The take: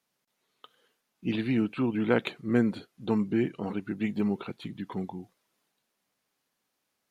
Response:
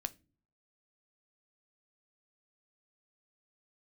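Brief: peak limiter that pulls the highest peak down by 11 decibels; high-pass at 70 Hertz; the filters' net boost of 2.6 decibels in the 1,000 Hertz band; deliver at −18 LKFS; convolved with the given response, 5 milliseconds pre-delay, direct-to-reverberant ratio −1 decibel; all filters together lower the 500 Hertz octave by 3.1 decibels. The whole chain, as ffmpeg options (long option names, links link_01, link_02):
-filter_complex "[0:a]highpass=70,equalizer=frequency=500:width_type=o:gain=-5,equalizer=frequency=1000:width_type=o:gain=5,alimiter=limit=-20.5dB:level=0:latency=1,asplit=2[link_01][link_02];[1:a]atrim=start_sample=2205,adelay=5[link_03];[link_02][link_03]afir=irnorm=-1:irlink=0,volume=2dB[link_04];[link_01][link_04]amix=inputs=2:normalize=0,volume=9dB"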